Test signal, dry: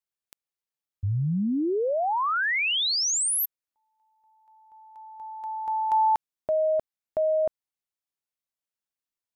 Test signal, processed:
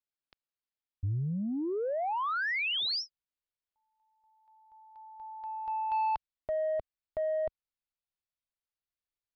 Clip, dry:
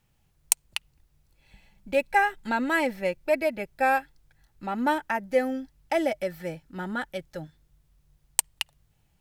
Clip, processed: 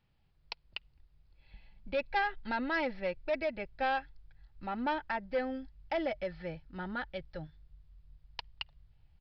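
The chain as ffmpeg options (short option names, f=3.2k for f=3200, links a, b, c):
-af "asubboost=boost=4.5:cutoff=100,aresample=11025,asoftclip=type=tanh:threshold=-20dB,aresample=44100,volume=-5dB"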